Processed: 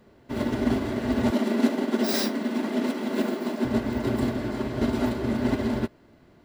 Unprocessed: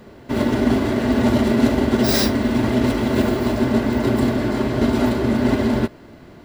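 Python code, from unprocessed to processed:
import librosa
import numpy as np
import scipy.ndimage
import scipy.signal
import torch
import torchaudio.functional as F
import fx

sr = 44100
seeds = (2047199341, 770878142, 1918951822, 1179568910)

y = fx.steep_highpass(x, sr, hz=160.0, slope=96, at=(1.31, 3.65))
y = fx.upward_expand(y, sr, threshold_db=-28.0, expansion=1.5)
y = y * librosa.db_to_amplitude(-4.5)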